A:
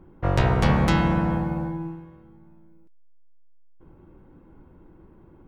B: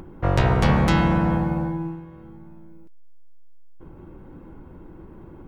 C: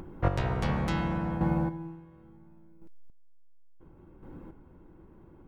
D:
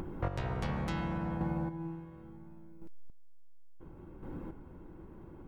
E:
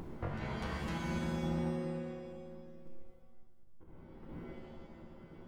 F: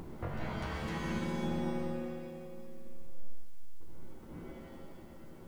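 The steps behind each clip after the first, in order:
in parallel at -3 dB: peak limiter -15.5 dBFS, peak gain reduction 8 dB; on the sum: upward compressor, threshold -33 dBFS; trim -1.5 dB
square tremolo 0.71 Hz, depth 60%, duty 20%; trim -3 dB
compression 3:1, threshold -38 dBFS, peak gain reduction 14 dB; trim +3.5 dB
square tremolo 4.9 Hz, depth 60%, duty 80%; pitch-shifted reverb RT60 1 s, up +7 st, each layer -2 dB, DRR 1.5 dB; trim -6 dB
word length cut 12-bit, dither triangular; algorithmic reverb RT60 1.5 s, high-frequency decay 0.7×, pre-delay 100 ms, DRR 4 dB

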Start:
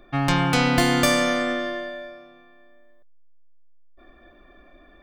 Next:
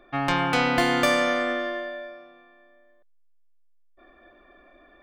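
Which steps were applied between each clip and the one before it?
tone controls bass -10 dB, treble -9 dB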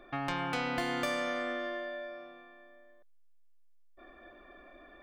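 compression 2:1, threshold -40 dBFS, peak gain reduction 12.5 dB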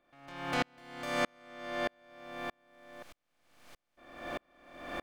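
spectral levelling over time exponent 0.4; waveshaping leveller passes 1; sawtooth tremolo in dB swelling 1.6 Hz, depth 40 dB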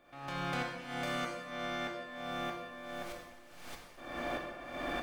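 compression 6:1, threshold -45 dBFS, peak gain reduction 17.5 dB; plate-style reverb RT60 1.4 s, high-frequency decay 0.8×, DRR 0 dB; trim +8 dB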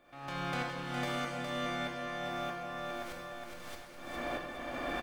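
feedback delay 412 ms, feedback 42%, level -4.5 dB

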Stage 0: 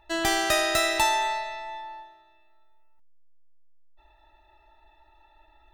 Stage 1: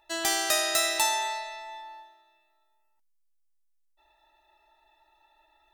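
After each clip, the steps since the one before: tone controls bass -13 dB, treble +9 dB; trim -4.5 dB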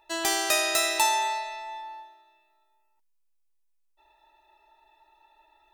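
small resonant body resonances 430/940/2500 Hz, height 7 dB, ringing for 20 ms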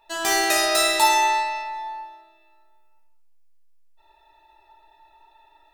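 simulated room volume 330 m³, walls mixed, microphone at 1.7 m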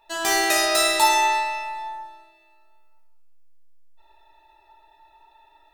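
Schroeder reverb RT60 1.9 s, combs from 32 ms, DRR 17.5 dB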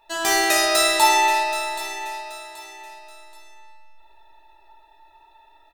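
feedback delay 778 ms, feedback 34%, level -12.5 dB; trim +1.5 dB

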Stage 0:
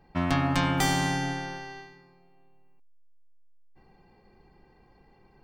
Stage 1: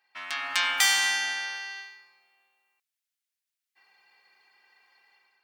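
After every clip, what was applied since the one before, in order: Chebyshev high-pass 2 kHz, order 2; level rider gain up to 9 dB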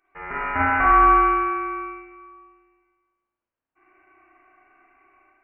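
frequency inversion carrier 3.1 kHz; spring tank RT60 1.3 s, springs 33/48 ms, chirp 80 ms, DRR -5.5 dB

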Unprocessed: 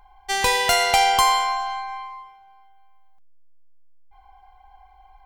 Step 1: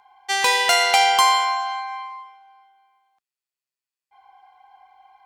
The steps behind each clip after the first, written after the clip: frequency weighting A; trim +1.5 dB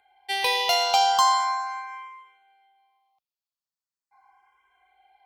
barber-pole phaser +0.4 Hz; trim -2.5 dB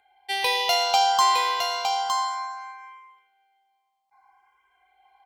delay 911 ms -5.5 dB

